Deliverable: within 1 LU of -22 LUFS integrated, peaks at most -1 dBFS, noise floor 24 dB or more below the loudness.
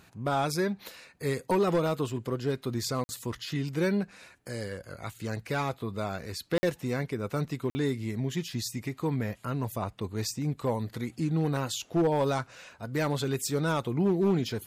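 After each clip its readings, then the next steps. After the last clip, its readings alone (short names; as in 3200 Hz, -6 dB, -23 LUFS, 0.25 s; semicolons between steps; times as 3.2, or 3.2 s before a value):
clipped 0.8%; flat tops at -19.5 dBFS; dropouts 3; longest dropout 50 ms; loudness -31.0 LUFS; peak -19.5 dBFS; loudness target -22.0 LUFS
-> clip repair -19.5 dBFS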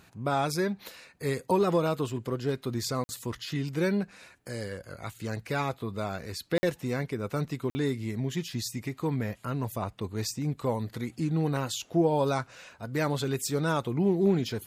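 clipped 0.0%; dropouts 3; longest dropout 50 ms
-> interpolate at 3.04/6.58/7.7, 50 ms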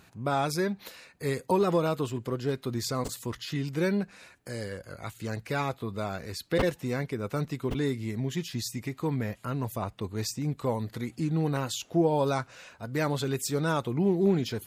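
dropouts 0; loudness -30.5 LUFS; peak -13.0 dBFS; loudness target -22.0 LUFS
-> gain +8.5 dB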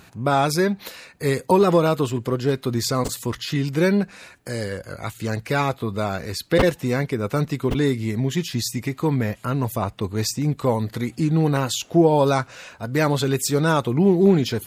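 loudness -22.0 LUFS; peak -4.5 dBFS; noise floor -51 dBFS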